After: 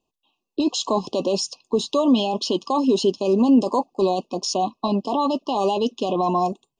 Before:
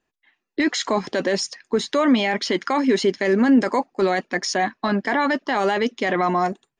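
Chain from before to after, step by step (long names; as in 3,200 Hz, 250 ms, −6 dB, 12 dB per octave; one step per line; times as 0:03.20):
linear-phase brick-wall band-stop 1,200–2,500 Hz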